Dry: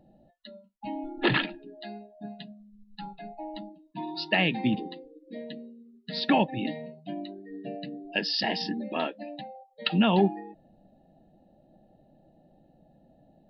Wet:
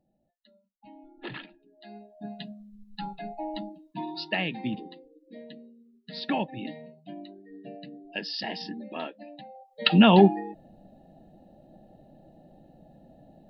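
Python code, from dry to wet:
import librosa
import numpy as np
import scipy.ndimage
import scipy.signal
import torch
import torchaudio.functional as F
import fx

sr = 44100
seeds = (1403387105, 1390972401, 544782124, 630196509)

y = fx.gain(x, sr, db=fx.line((1.71, -15.0), (1.96, -3.0), (2.47, 4.0), (3.82, 4.0), (4.45, -5.5), (9.41, -5.5), (9.83, 6.0)))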